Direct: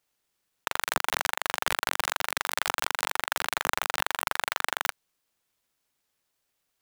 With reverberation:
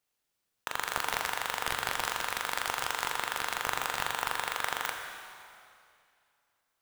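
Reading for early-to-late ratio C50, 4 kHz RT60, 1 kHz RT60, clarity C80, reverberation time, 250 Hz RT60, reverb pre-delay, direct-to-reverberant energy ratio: 4.0 dB, 2.2 s, 2.4 s, 5.0 dB, 2.4 s, 2.4 s, 8 ms, 3.0 dB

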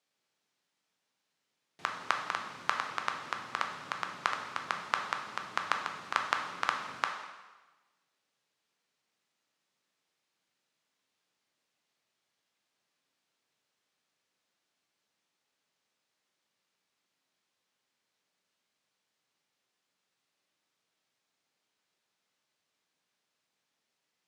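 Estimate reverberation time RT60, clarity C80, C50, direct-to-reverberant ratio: 1.2 s, 8.0 dB, 6.0 dB, 2.5 dB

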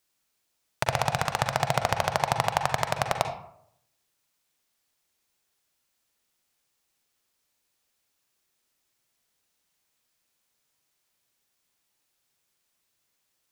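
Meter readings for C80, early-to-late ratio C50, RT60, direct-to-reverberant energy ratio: 11.0 dB, 7.5 dB, 0.70 s, 5.5 dB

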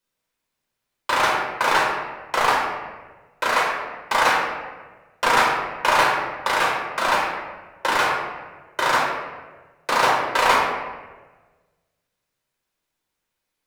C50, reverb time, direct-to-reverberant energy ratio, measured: 1.0 dB, 1.3 s, -3.5 dB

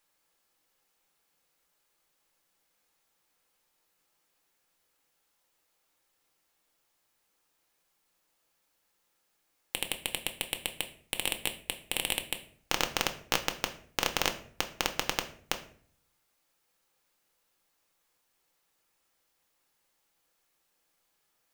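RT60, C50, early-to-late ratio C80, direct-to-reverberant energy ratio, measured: 0.55 s, 13.0 dB, 16.5 dB, 5.5 dB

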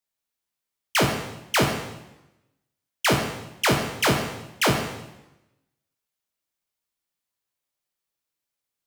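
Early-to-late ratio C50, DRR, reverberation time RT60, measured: 5.0 dB, 2.0 dB, 0.95 s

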